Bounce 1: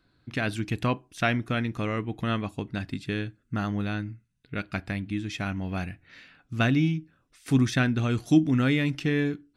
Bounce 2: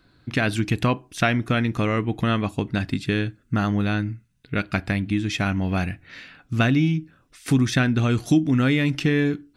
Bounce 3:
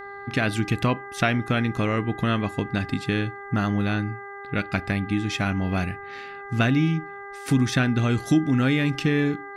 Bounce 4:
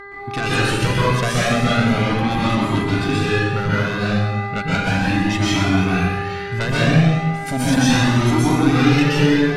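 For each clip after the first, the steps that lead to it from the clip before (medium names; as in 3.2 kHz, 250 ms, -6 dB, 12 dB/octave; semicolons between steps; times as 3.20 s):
compression 2.5:1, threshold -26 dBFS, peak gain reduction 8.5 dB; trim +8.5 dB
mains buzz 400 Hz, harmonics 5, -37 dBFS -1 dB/octave; trim -1.5 dB
sine folder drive 11 dB, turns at -5 dBFS; plate-style reverb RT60 1.3 s, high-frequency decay 0.95×, pre-delay 110 ms, DRR -8 dB; Shepard-style flanger rising 0.36 Hz; trim -8.5 dB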